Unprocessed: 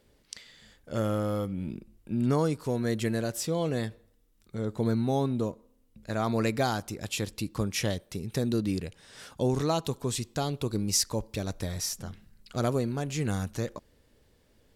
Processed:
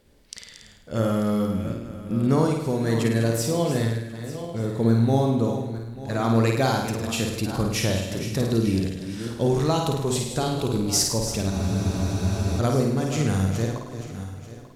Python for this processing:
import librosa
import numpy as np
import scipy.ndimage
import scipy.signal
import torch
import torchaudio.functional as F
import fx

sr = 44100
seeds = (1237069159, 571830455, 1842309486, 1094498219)

y = fx.reverse_delay_fb(x, sr, ms=445, feedback_pct=50, wet_db=-10.5)
y = fx.low_shelf(y, sr, hz=190.0, db=3.0)
y = fx.room_flutter(y, sr, wall_m=9.0, rt60_s=0.76)
y = fx.spec_freeze(y, sr, seeds[0], at_s=11.52, hold_s=1.07)
y = F.gain(torch.from_numpy(y), 3.0).numpy()